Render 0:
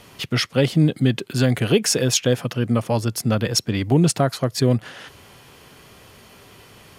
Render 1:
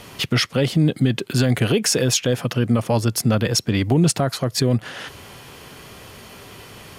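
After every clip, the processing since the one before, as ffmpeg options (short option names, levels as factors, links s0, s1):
-filter_complex "[0:a]asplit=2[s0][s1];[s1]acompressor=threshold=0.0501:ratio=6,volume=1[s2];[s0][s2]amix=inputs=2:normalize=0,alimiter=limit=0.376:level=0:latency=1:release=18"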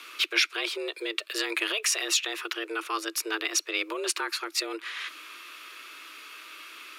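-af "lowshelf=f=730:t=q:w=3:g=-10,afreqshift=220,equalizer=f=200:t=o:w=0.33:g=-6,equalizer=f=2500:t=o:w=0.33:g=11,equalizer=f=4000:t=o:w=0.33:g=6,volume=0.447"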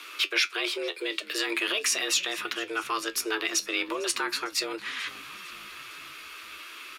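-filter_complex "[0:a]asplit=2[s0][s1];[s1]alimiter=limit=0.106:level=0:latency=1:release=44,volume=1[s2];[s0][s2]amix=inputs=2:normalize=0,flanger=delay=9.6:depth=2.9:regen=59:speed=0.4:shape=triangular,asplit=6[s3][s4][s5][s6][s7][s8];[s4]adelay=453,afreqshift=-66,volume=0.0891[s9];[s5]adelay=906,afreqshift=-132,volume=0.0525[s10];[s6]adelay=1359,afreqshift=-198,volume=0.0309[s11];[s7]adelay=1812,afreqshift=-264,volume=0.0184[s12];[s8]adelay=2265,afreqshift=-330,volume=0.0108[s13];[s3][s9][s10][s11][s12][s13]amix=inputs=6:normalize=0"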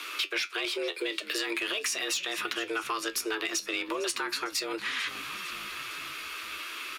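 -af "asoftclip=type=tanh:threshold=0.15,acompressor=threshold=0.0224:ratio=6,volume=1.68"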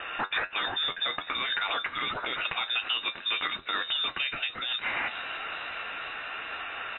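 -filter_complex "[0:a]asplit=2[s0][s1];[s1]volume=22.4,asoftclip=hard,volume=0.0447,volume=0.376[s2];[s0][s2]amix=inputs=2:normalize=0,lowpass=f=3400:t=q:w=0.5098,lowpass=f=3400:t=q:w=0.6013,lowpass=f=3400:t=q:w=0.9,lowpass=f=3400:t=q:w=2.563,afreqshift=-4000"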